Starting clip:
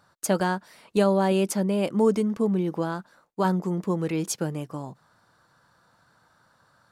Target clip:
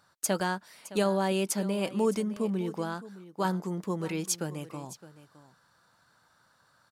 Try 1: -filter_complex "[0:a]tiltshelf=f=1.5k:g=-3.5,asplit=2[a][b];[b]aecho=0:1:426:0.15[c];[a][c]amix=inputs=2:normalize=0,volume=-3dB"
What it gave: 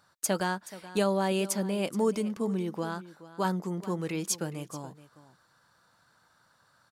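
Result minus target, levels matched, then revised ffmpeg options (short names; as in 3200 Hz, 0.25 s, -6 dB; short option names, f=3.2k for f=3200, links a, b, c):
echo 0.188 s early
-filter_complex "[0:a]tiltshelf=f=1.5k:g=-3.5,asplit=2[a][b];[b]aecho=0:1:614:0.15[c];[a][c]amix=inputs=2:normalize=0,volume=-3dB"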